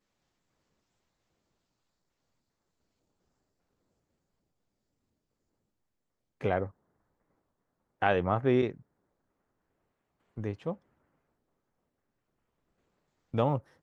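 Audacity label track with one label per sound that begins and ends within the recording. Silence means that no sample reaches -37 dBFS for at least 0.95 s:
6.410000	6.670000	sound
8.020000	8.720000	sound
10.380000	10.730000	sound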